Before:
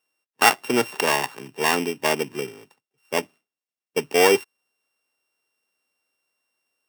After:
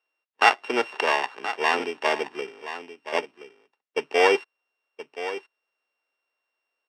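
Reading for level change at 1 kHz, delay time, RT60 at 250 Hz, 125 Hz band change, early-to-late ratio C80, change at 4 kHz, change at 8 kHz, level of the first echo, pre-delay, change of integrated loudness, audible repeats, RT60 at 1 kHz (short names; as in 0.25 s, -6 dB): 0.0 dB, 1.024 s, none, under -15 dB, none, -3.0 dB, -14.0 dB, -12.5 dB, none, -2.5 dB, 1, none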